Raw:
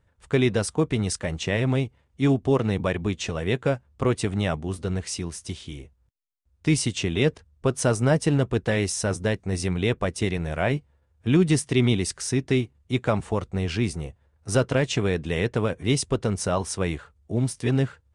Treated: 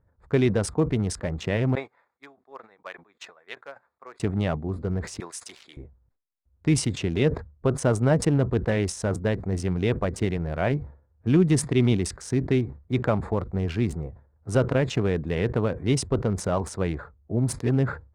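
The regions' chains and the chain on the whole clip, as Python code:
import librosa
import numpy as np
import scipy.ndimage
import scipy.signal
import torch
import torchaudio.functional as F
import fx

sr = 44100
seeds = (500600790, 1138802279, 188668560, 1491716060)

y = fx.chain(x, sr, fx.highpass(hz=1200.0, slope=12),
    fx.high_shelf(hz=7700.0, db=-3.5),
    fx.upward_expand(threshold_db=-46.0, expansion=2.5), at=(1.75, 4.2))
y = fx.chain(y, sr, fx.highpass(hz=770.0, slope=12),
    fx.high_shelf(hz=2400.0, db=9.5), at=(5.2, 5.77))
y = fx.wiener(y, sr, points=15)
y = fx.high_shelf(y, sr, hz=2700.0, db=-7.5)
y = fx.sustainer(y, sr, db_per_s=140.0)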